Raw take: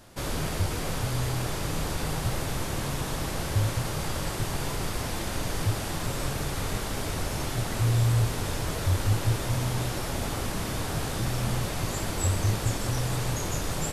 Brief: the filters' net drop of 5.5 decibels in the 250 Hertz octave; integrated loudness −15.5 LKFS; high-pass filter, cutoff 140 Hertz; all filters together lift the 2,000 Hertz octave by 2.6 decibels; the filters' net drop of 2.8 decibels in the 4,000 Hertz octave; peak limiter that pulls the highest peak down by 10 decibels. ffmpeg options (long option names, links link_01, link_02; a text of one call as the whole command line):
ffmpeg -i in.wav -af "highpass=140,equalizer=frequency=250:width_type=o:gain=-7,equalizer=frequency=2000:width_type=o:gain=4.5,equalizer=frequency=4000:width_type=o:gain=-5,volume=21dB,alimiter=limit=-7dB:level=0:latency=1" out.wav